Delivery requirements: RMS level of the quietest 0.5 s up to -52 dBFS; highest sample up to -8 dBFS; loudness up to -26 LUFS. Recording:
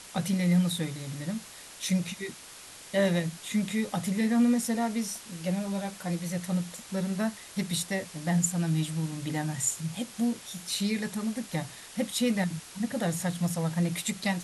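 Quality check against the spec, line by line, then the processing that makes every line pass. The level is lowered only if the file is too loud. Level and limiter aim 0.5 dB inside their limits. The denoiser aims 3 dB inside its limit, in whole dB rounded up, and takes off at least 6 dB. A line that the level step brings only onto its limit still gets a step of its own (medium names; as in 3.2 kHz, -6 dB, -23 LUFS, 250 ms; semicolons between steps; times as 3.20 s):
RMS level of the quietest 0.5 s -47 dBFS: fail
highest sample -14.0 dBFS: pass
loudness -30.0 LUFS: pass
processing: noise reduction 8 dB, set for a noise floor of -47 dBFS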